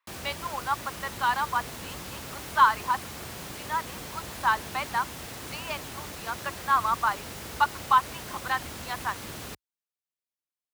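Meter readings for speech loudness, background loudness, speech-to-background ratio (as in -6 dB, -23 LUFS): -28.5 LUFS, -38.5 LUFS, 10.0 dB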